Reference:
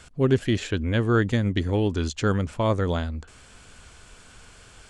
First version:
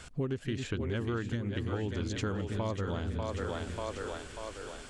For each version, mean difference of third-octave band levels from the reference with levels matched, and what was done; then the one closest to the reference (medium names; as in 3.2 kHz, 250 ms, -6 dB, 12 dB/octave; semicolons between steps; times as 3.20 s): 9.0 dB: two-band feedback delay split 330 Hz, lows 269 ms, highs 591 ms, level -6.5 dB; compression 12:1, threshold -30 dBFS, peak gain reduction 16 dB; loudspeaker Doppler distortion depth 0.13 ms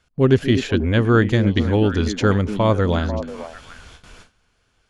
4.5 dB: on a send: repeats whose band climbs or falls 247 ms, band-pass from 250 Hz, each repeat 1.4 oct, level -5 dB; on the sum: gate with hold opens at -36 dBFS; peaking EQ 8.1 kHz -13 dB 0.28 oct; trim +5.5 dB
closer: second